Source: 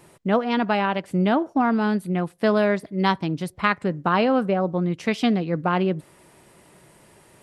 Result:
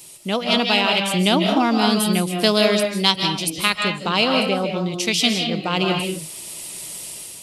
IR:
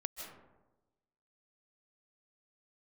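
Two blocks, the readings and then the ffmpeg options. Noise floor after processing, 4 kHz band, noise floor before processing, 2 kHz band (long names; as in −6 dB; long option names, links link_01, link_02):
−37 dBFS, +16.5 dB, −54 dBFS, +5.0 dB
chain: -filter_complex "[1:a]atrim=start_sample=2205,afade=type=out:start_time=0.32:duration=0.01,atrim=end_sample=14553[link_01];[0:a][link_01]afir=irnorm=-1:irlink=0,aexciter=amount=5.4:drive=8.4:freq=2500,dynaudnorm=framelen=200:gausssize=5:maxgain=8dB,volume=-1dB"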